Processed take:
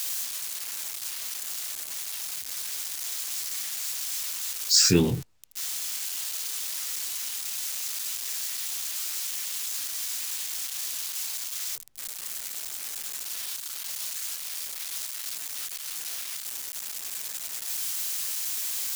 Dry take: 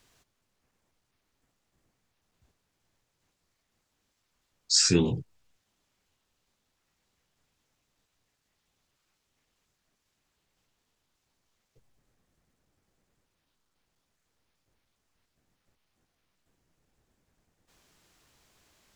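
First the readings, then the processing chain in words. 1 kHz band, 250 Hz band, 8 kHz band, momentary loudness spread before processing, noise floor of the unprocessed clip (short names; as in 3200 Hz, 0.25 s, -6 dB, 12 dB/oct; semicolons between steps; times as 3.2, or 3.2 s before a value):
+8.0 dB, +2.5 dB, +9.5 dB, 12 LU, -79 dBFS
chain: switching spikes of -26.5 dBFS; reverse; upward compressor, threshold -44 dBFS; reverse; gain +2.5 dB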